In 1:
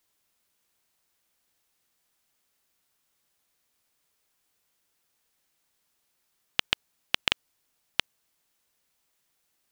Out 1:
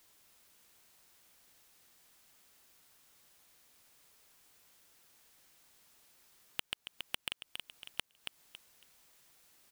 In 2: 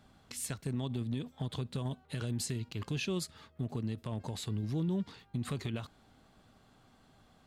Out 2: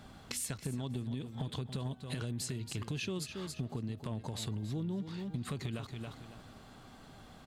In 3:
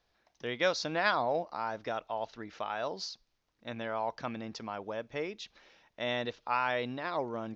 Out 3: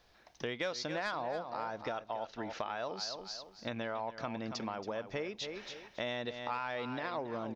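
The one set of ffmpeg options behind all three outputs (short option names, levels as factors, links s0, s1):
-af "asoftclip=type=tanh:threshold=0.141,aecho=1:1:277|554|831:0.251|0.0527|0.0111,acompressor=threshold=0.00501:ratio=4,volume=2.82"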